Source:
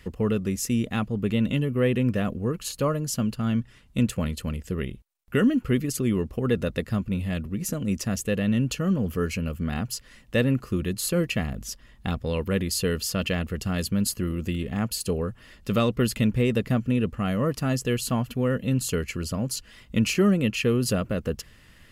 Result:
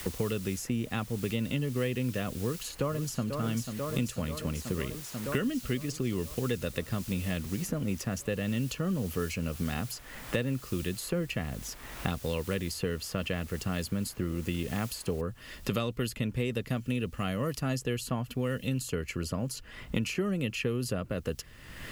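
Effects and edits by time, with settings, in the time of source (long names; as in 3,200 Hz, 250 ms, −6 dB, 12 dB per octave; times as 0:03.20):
0:02.41–0:03.32: delay throw 490 ms, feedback 75%, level −9.5 dB
0:05.38–0:06.53: low-pass filter 6,100 Hz
0:15.21: noise floor change −49 dB −67 dB
whole clip: parametric band 210 Hz −5 dB 0.27 octaves; multiband upward and downward compressor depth 100%; level −6.5 dB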